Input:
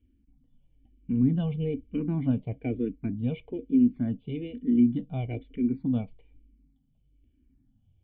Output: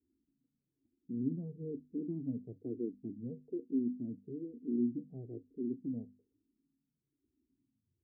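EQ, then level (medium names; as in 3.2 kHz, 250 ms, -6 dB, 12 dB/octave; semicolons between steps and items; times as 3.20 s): high-pass 110 Hz 12 dB/octave; four-pole ladder low-pass 420 Hz, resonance 65%; hum notches 50/100/150/200/250 Hz; -3.5 dB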